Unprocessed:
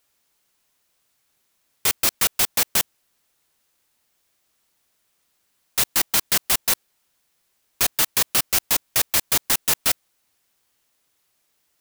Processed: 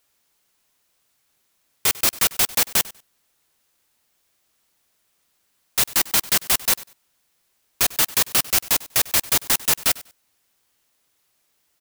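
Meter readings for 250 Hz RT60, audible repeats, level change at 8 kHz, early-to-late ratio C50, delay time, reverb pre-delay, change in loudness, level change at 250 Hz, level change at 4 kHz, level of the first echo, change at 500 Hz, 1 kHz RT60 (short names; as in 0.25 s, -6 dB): none, 2, +1.0 dB, none, 97 ms, none, +1.0 dB, +1.0 dB, +1.0 dB, -20.0 dB, +1.0 dB, none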